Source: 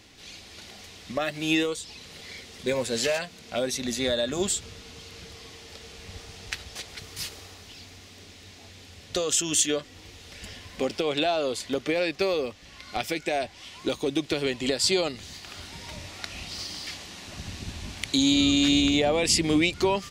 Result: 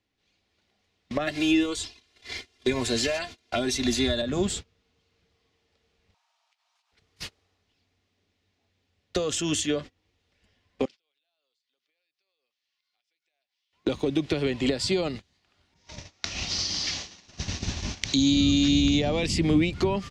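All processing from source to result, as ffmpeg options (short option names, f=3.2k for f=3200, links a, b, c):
-filter_complex "[0:a]asettb=1/sr,asplit=3[a][b][c];[a]atrim=end=1.274[d];[b]atrim=start=1.27:end=4.22,asetpts=PTS-STARTPTS,afade=t=in:d=0.004:c=qsin,afade=t=out:st=2.946:d=0.004:c=qsin,highshelf=f=2.1k:g=8,aecho=1:1:2.9:0.83,atrim=end_sample=130095[e];[c]atrim=start=4.216[f];[d][e]acrossfade=d=0.004:c1=hsin:c2=qsin[g];[g][f]acrossfade=d=0.004:c1=qsin:c2=hsin,asettb=1/sr,asplit=3[h][i][j];[h]atrim=end=6.144[k];[i]atrim=start=6.14:end=6.92,asetpts=PTS-STARTPTS,afade=t=in:d=0.004:c=qsin,afade=t=out:st=0.776:d=0.004:c=qsin,highpass=f=200:w=0.5412,highpass=f=200:w=1.3066,acompressor=threshold=-41dB:ratio=6:attack=3.2:release=140:knee=1:detection=peak,afreqshift=480[l];[j]atrim=start=6.916[m];[k][l]acrossfade=d=0.004:c1=hsin:c2=qsin[n];[n][m]acrossfade=d=0.004:c1=qsin:c2=hsin,asettb=1/sr,asplit=3[o][p][q];[o]atrim=end=10.854[r];[p]atrim=start=10.85:end=13.73,asetpts=PTS-STARTPTS,afade=t=in:d=0.004:c=qsin,afade=t=out:st=2.876:d=0.004:c=qsin,bandpass=f=4.6k:t=q:w=1.2,acompressor=threshold=-49dB:ratio=8:attack=3.2:release=140:knee=1:detection=peak[s];[q]atrim=start=13.726[t];[r][s]acrossfade=d=0.004:c1=hsin:c2=qsin[u];[u][t]acrossfade=d=0.004:c1=qsin:c2=hsin,asettb=1/sr,asplit=3[v][w][x];[v]atrim=end=15.744[y];[w]atrim=start=15.74:end=19.27,asetpts=PTS-STARTPTS,afade=t=in:d=0.004:c=qsin,afade=t=out:st=3.526:d=0.004:c=qsin,adynamicequalizer=threshold=0.0112:dfrequency=4100:dqfactor=0.77:tfrequency=4100:tqfactor=0.77:attack=5:release=100:ratio=0.375:range=2.5:mode=boostabove:tftype=bell,lowpass=f=6.1k:t=q:w=4.1[z];[x]atrim=start=19.266[aa];[y][z]acrossfade=d=0.004:c1=hsin:c2=qsin[ab];[ab][aa]acrossfade=d=0.004:c1=qsin:c2=hsin,aemphasis=mode=reproduction:type=50fm,agate=range=-31dB:threshold=-36dB:ratio=16:detection=peak,acrossover=split=250[ac][ad];[ad]acompressor=threshold=-32dB:ratio=6[ae];[ac][ae]amix=inputs=2:normalize=0,volume=6dB"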